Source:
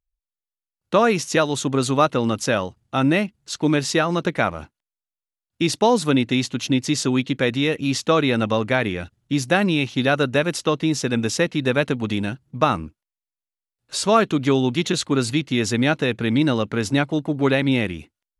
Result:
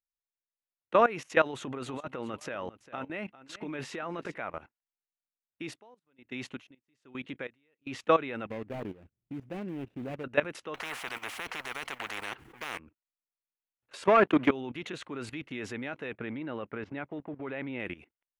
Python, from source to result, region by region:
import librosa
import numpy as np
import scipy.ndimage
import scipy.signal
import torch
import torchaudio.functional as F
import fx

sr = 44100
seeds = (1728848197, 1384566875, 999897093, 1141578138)

y = fx.chain(x, sr, fx.over_compress(threshold_db=-22.0, ratio=-0.5),
    fx.echo_single(ms=400, db=-14.5), at=(1.46, 4.38))
y = fx.chain(y, sr, fx.high_shelf(hz=5200.0, db=3.5),
    fx.tremolo_db(hz=1.2, depth_db=40), at=(5.63, 7.87))
y = fx.chain(y, sr, fx.median_filter(points=41),
    fx.peak_eq(hz=1100.0, db=-9.0, octaves=2.6), at=(8.46, 10.24))
y = fx.chain(y, sr, fx.law_mismatch(coded='mu'),
    fx.peak_eq(hz=600.0, db=-14.0, octaves=0.24),
    fx.spectral_comp(ratio=10.0), at=(10.74, 12.79))
y = fx.chain(y, sr, fx.highpass(hz=140.0, slope=24),
    fx.high_shelf(hz=3700.0, db=-6.0),
    fx.leveller(passes=2), at=(14.05, 14.5))
y = fx.chain(y, sr, fx.law_mismatch(coded='A'),
    fx.air_absorb(metres=230.0), at=(16.13, 17.8))
y = fx.bass_treble(y, sr, bass_db=-10, treble_db=-5)
y = fx.level_steps(y, sr, step_db=17)
y = fx.high_shelf_res(y, sr, hz=3300.0, db=-9.0, q=1.5)
y = y * 10.0 ** (-3.0 / 20.0)